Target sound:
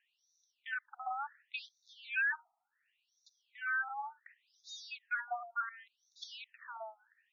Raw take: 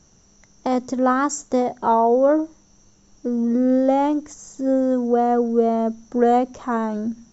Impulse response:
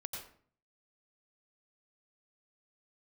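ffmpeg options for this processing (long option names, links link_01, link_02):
-filter_complex "[0:a]asplit=3[link_01][link_02][link_03];[link_01]bandpass=frequency=530:width_type=q:width=8,volume=0dB[link_04];[link_02]bandpass=frequency=1840:width_type=q:width=8,volume=-6dB[link_05];[link_03]bandpass=frequency=2480:width_type=q:width=8,volume=-9dB[link_06];[link_04][link_05][link_06]amix=inputs=3:normalize=0,asoftclip=type=hard:threshold=-27dB,afftfilt=real='re*between(b*sr/1024,930*pow(5000/930,0.5+0.5*sin(2*PI*0.69*pts/sr))/1.41,930*pow(5000/930,0.5+0.5*sin(2*PI*0.69*pts/sr))*1.41)':imag='im*between(b*sr/1024,930*pow(5000/930,0.5+0.5*sin(2*PI*0.69*pts/sr))/1.41,930*pow(5000/930,0.5+0.5*sin(2*PI*0.69*pts/sr))*1.41)':win_size=1024:overlap=0.75,volume=7.5dB"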